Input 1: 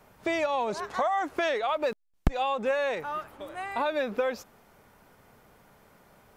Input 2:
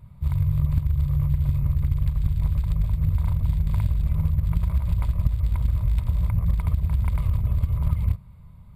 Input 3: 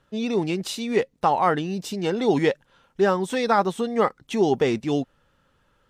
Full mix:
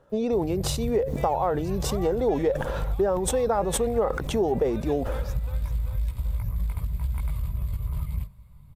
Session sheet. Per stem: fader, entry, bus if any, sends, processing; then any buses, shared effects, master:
−9.0 dB, 0.90 s, no send, echo send −10.5 dB, no processing
−2.5 dB, 0.10 s, no send, no echo send, multi-voice chorus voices 6, 0.88 Hz, delay 18 ms, depth 3.8 ms
+2.5 dB, 0.00 s, no send, no echo send, de-essing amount 45%; drawn EQ curve 290 Hz 0 dB, 530 Hz +10 dB, 2,900 Hz −14 dB; level that may fall only so fast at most 82 dB per second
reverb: not used
echo: repeating echo 388 ms, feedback 55%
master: high-shelf EQ 4,400 Hz +11 dB; downward compressor 4 to 1, threshold −23 dBFS, peak gain reduction 14.5 dB

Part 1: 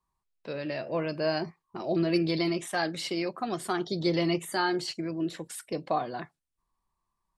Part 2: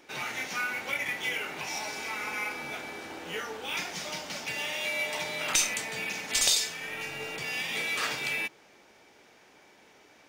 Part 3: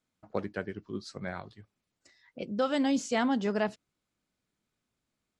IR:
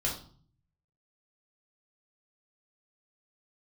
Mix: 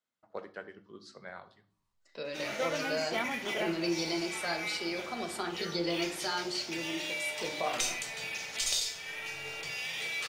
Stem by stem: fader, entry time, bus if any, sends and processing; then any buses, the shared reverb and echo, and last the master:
−7.5 dB, 1.70 s, bus A, send −7 dB, parametric band 120 Hz −14 dB 0.96 octaves
−9.0 dB, 2.25 s, bus A, send −8.5 dB, parametric band 220 Hz −7.5 dB
−5.0 dB, 0.00 s, no bus, send −11 dB, high-pass filter 780 Hz 6 dB per octave; high-shelf EQ 3,600 Hz −6.5 dB; notch filter 2,400 Hz
bus A: 0.0 dB, parametric band 4,700 Hz +8.5 dB 1.9 octaves; downward compressor 2 to 1, threshold −38 dBFS, peak gain reduction 9 dB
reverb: on, RT60 0.50 s, pre-delay 4 ms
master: no processing

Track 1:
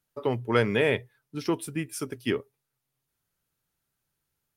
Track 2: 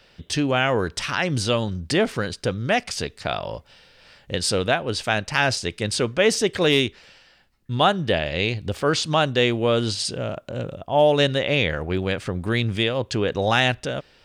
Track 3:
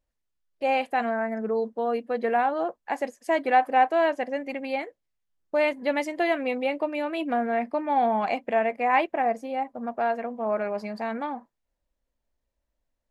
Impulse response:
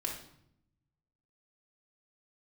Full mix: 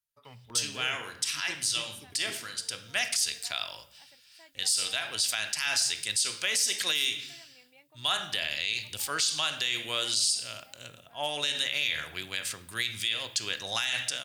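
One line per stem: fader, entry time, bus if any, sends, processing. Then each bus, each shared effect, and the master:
−4.0 dB, 0.00 s, no bus, send −12.5 dB, notch on a step sequencer 2 Hz 340–8,000 Hz
+2.0 dB, 0.25 s, bus A, send −7 dB, spectral tilt +3.5 dB per octave; multiband upward and downward expander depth 40%; automatic ducking −12 dB, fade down 1.00 s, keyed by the first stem
−18.0 dB, 1.10 s, bus A, no send, no processing
bus A: 0.0 dB, high-shelf EQ 6,100 Hz +11.5 dB; downward compressor, threshold −15 dBFS, peak gain reduction 14.5 dB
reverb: on, RT60 0.70 s, pre-delay 3 ms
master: guitar amp tone stack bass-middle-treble 5-5-5; brickwall limiter −16 dBFS, peak gain reduction 10.5 dB

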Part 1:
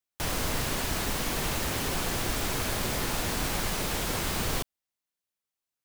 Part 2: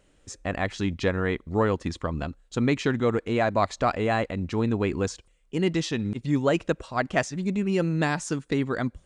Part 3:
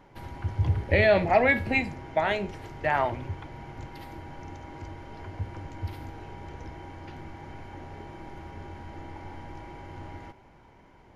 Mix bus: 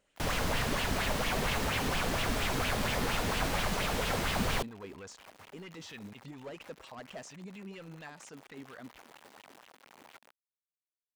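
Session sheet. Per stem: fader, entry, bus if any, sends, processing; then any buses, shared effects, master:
−1.5 dB, 0.00 s, no bus, no send, high-shelf EQ 5,900 Hz −8.5 dB
0:07.76 −9.5 dB → 0:08.15 −16.5 dB, 0.00 s, bus A, no send, low-shelf EQ 240 Hz −10.5 dB
−15.0 dB, 0.00 s, bus A, no send, bit reduction 6 bits; high-pass filter 260 Hz 12 dB per octave
bus A: 0.0 dB, soft clipping −34 dBFS, distortion −10 dB; brickwall limiter −40.5 dBFS, peak gain reduction 6.5 dB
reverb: not used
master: parametric band 330 Hz −7 dB 0.52 octaves; auto-filter bell 4.3 Hz 230–3,100 Hz +9 dB

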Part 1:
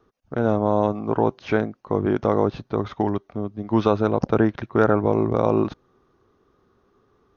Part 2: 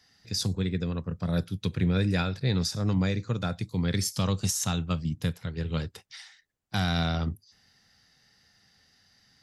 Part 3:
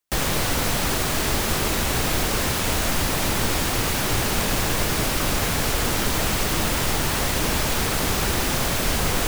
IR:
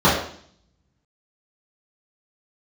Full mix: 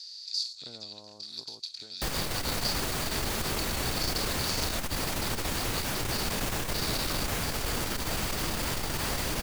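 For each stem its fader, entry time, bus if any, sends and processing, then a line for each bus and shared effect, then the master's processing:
−19.0 dB, 0.30 s, no send, downward compressor 3 to 1, threshold −25 dBFS, peak gain reduction 10 dB; automatic ducking −9 dB, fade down 1.75 s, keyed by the second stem
−2.5 dB, 0.00 s, no send, compressor on every frequency bin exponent 0.4; four-pole ladder band-pass 4,500 Hz, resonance 90%
−7.5 dB, 1.90 s, no send, no processing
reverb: not used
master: saturating transformer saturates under 78 Hz

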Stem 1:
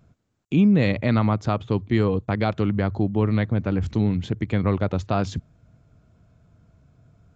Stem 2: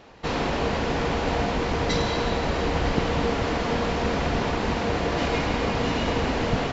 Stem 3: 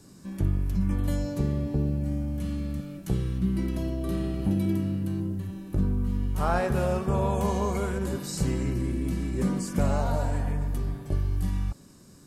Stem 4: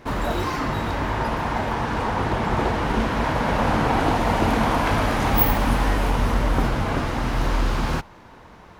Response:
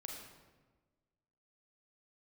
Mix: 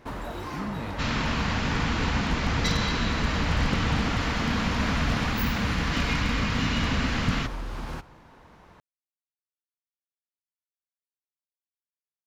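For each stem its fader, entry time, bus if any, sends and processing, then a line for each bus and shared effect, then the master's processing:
−18.5 dB, 0.00 s, no send, no processing
0.0 dB, 0.75 s, send −11 dB, flat-topped bell 540 Hz −15 dB
muted
−8.0 dB, 0.00 s, send −11.5 dB, downward compressor, threshold −24 dBFS, peak gain reduction 11.5 dB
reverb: on, RT60 1.3 s, pre-delay 32 ms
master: wave folding −15.5 dBFS

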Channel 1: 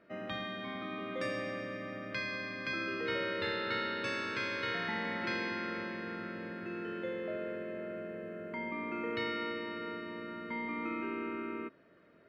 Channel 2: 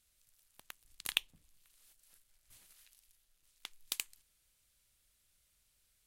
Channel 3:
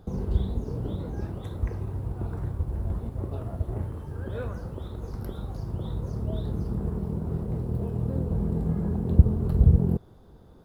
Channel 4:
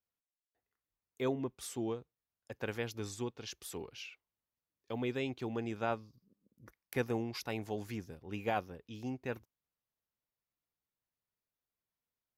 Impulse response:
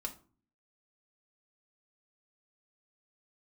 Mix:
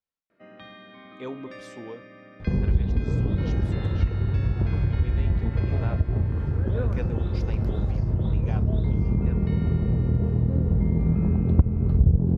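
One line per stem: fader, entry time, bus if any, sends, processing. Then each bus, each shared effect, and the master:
−6.0 dB, 0.30 s, no send, no processing
muted
+3.0 dB, 2.40 s, no send, low-shelf EQ 340 Hz +10.5 dB; harmonic generator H 8 −27 dB, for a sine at 5.5 dBFS
−4.5 dB, 0.00 s, send −5 dB, no processing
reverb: on, RT60 0.40 s, pre-delay 4 ms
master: low-pass filter 5,200 Hz 12 dB per octave; downward compressor 2.5 to 1, threshold −21 dBFS, peak gain reduction 16 dB

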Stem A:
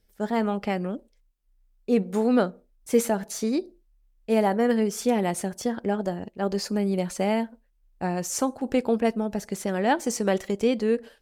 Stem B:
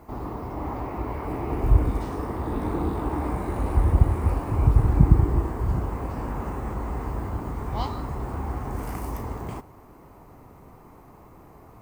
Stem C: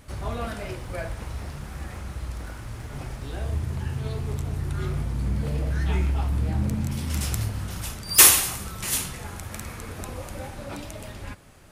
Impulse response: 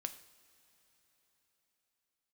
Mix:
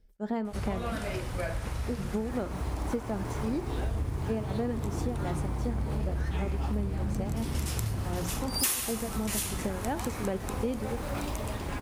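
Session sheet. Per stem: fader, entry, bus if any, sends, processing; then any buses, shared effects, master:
−5.5 dB, 0.00 s, send −4.5 dB, spectral tilt −2 dB per octave; mains-hum notches 60/120/180 Hz; tremolo along a rectified sine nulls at 2.8 Hz
−4.5 dB, 2.20 s, no send, gain into a clipping stage and back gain 20.5 dB
−1.5 dB, 0.45 s, send −5 dB, no processing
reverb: on, pre-delay 3 ms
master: downward compressor 5 to 1, threshold −28 dBFS, peak gain reduction 18.5 dB

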